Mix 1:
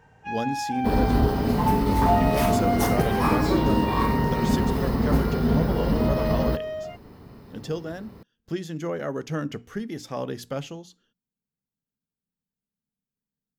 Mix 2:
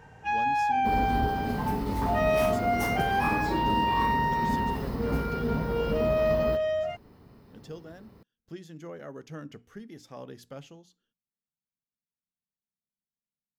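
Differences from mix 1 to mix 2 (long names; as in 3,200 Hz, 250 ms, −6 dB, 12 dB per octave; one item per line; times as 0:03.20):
speech −12.0 dB
first sound +4.5 dB
second sound −8.0 dB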